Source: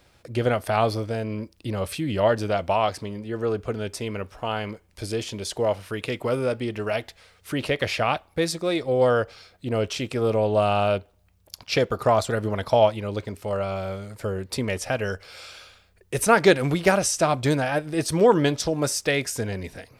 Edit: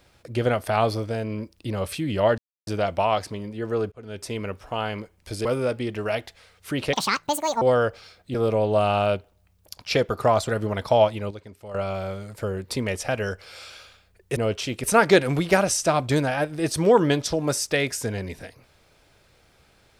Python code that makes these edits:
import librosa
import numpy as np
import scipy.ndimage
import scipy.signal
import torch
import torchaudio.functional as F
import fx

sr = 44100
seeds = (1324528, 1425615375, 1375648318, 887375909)

y = fx.edit(x, sr, fx.insert_silence(at_s=2.38, length_s=0.29),
    fx.fade_in_span(start_s=3.63, length_s=0.4),
    fx.cut(start_s=5.16, length_s=1.1),
    fx.speed_span(start_s=7.74, length_s=1.22, speed=1.78),
    fx.move(start_s=9.69, length_s=0.47, to_s=16.18),
    fx.clip_gain(start_s=13.12, length_s=0.44, db=-10.5), tone=tone)